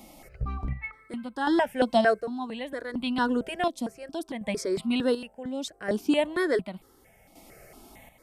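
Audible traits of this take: chopped level 0.68 Hz, depth 60%, duty 50%; notches that jump at a steady rate 4.4 Hz 430–1700 Hz

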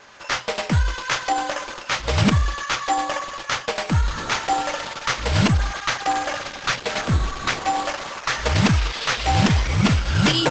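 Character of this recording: aliases and images of a low sample rate 8000 Hz, jitter 0%; Opus

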